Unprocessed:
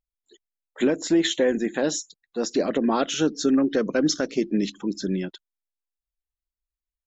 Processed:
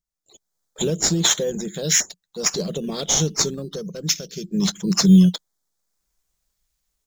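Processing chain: FFT filter 100 Hz 0 dB, 180 Hz +11 dB, 260 Hz -19 dB, 440 Hz -4 dB, 850 Hz -18 dB, 1.3 kHz -14 dB, 2.2 kHz -21 dB, 3.3 kHz +4 dB, 6.6 kHz +13 dB, 9.9 kHz +7 dB; level rider gain up to 16 dB; in parallel at -9 dB: decimation with a swept rate 10×, swing 100% 0.41 Hz; on the sum: trim -5 dB

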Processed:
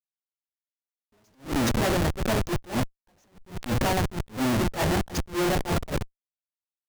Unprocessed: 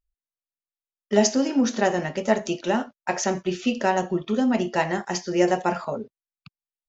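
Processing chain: octave divider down 1 oct, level -4 dB; treble shelf 2.1 kHz +3.5 dB; Schmitt trigger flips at -27 dBFS; attacks held to a fixed rise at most 220 dB/s; trim +1 dB

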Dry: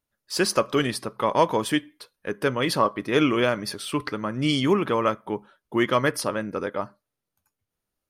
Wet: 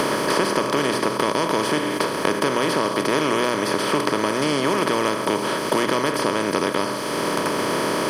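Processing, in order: spectral levelling over time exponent 0.2; hum notches 60/120 Hz; three bands compressed up and down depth 100%; trim -8 dB

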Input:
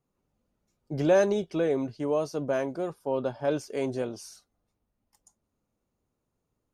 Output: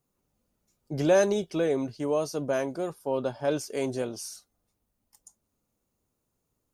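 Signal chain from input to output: treble shelf 5.4 kHz +11 dB

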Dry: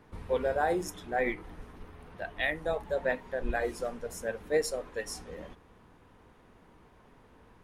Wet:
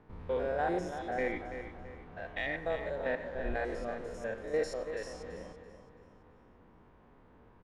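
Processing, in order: spectrogram pixelated in time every 100 ms; in parallel at -4 dB: saturation -27 dBFS, distortion -14 dB; on the sum: distance through air 86 m; feedback delay 333 ms, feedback 42%, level -9.5 dB; on a send at -14 dB: reverberation RT60 0.40 s, pre-delay 89 ms; on the sum: tape noise reduction on one side only decoder only; trim -4.5 dB

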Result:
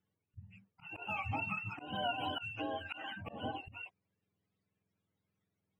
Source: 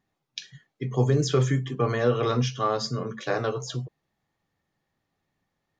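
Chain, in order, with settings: spectrum inverted on a logarithmic axis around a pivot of 590 Hz; compression 4:1, threshold -28 dBFS, peak gain reduction 8.5 dB; 1.95–3.33 s: tilt shelf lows -6.5 dB, about 630 Hz; slow attack 158 ms; trim -6.5 dB

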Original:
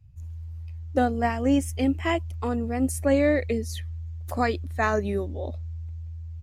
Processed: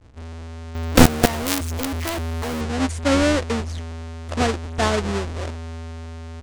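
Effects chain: square wave that keeps the level; low-pass 8.6 kHz 24 dB/octave; 0.75–2.61 s: companded quantiser 2-bit; trim -1 dB

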